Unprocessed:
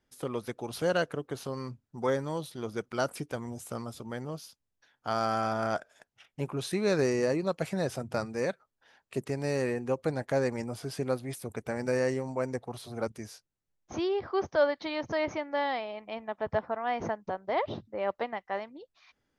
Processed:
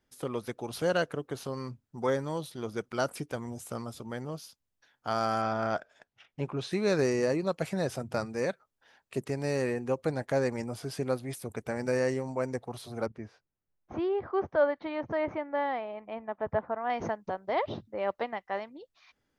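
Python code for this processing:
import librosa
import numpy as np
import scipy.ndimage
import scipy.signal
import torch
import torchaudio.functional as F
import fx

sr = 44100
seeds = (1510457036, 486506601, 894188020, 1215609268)

y = fx.lowpass(x, sr, hz=5000.0, slope=12, at=(5.42, 6.72))
y = fx.lowpass(y, sr, hz=1900.0, slope=12, at=(13.06, 16.9))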